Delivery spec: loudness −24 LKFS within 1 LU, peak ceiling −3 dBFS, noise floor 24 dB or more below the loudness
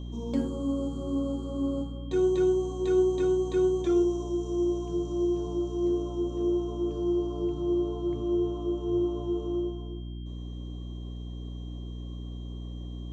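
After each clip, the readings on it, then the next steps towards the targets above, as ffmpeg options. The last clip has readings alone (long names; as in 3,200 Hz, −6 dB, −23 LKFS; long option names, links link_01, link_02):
mains hum 60 Hz; hum harmonics up to 300 Hz; level of the hum −35 dBFS; interfering tone 3,200 Hz; level of the tone −55 dBFS; integrated loudness −28.5 LKFS; sample peak −15.5 dBFS; target loudness −24.0 LKFS
→ -af "bandreject=frequency=60:width_type=h:width=6,bandreject=frequency=120:width_type=h:width=6,bandreject=frequency=180:width_type=h:width=6,bandreject=frequency=240:width_type=h:width=6,bandreject=frequency=300:width_type=h:width=6"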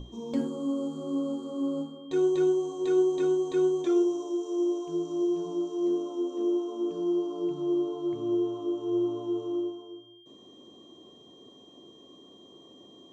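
mains hum none found; interfering tone 3,200 Hz; level of the tone −55 dBFS
→ -af "bandreject=frequency=3200:width=30"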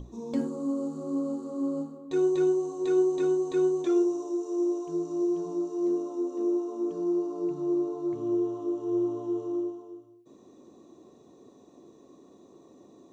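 interfering tone none found; integrated loudness −29.0 LKFS; sample peak −16.0 dBFS; target loudness −24.0 LKFS
→ -af "volume=5dB"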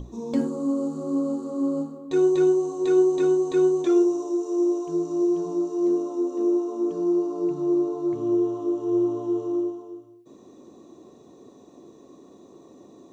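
integrated loudness −24.0 LKFS; sample peak −11.0 dBFS; background noise floor −51 dBFS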